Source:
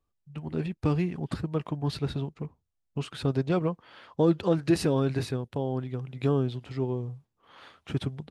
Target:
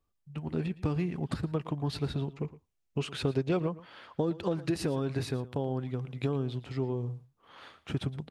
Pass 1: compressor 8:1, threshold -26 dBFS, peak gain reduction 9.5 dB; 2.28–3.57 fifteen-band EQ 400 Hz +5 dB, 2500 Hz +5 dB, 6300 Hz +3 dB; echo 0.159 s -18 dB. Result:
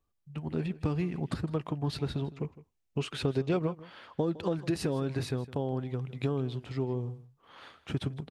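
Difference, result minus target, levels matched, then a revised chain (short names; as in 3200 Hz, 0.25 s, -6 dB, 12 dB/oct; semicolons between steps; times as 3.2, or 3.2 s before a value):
echo 45 ms late
compressor 8:1, threshold -26 dBFS, peak gain reduction 9.5 dB; 2.28–3.57 fifteen-band EQ 400 Hz +5 dB, 2500 Hz +5 dB, 6300 Hz +3 dB; echo 0.114 s -18 dB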